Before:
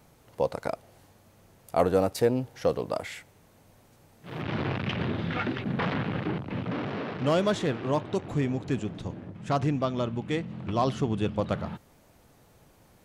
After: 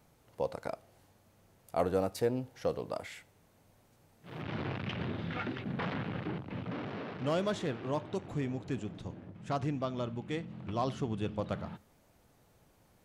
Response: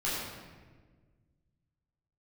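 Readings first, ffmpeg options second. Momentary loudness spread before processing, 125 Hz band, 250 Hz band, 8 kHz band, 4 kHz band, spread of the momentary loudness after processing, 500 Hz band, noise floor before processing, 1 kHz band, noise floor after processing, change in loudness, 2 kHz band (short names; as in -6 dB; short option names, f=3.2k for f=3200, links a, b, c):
12 LU, -7.0 dB, -7.0 dB, -7.0 dB, -7.0 dB, 12 LU, -7.0 dB, -59 dBFS, -7.0 dB, -67 dBFS, -7.0 dB, -7.0 dB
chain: -filter_complex "[0:a]asplit=2[a][b];[1:a]atrim=start_sample=2205,atrim=end_sample=4410[c];[b][c]afir=irnorm=-1:irlink=0,volume=-24.5dB[d];[a][d]amix=inputs=2:normalize=0,volume=-7.5dB"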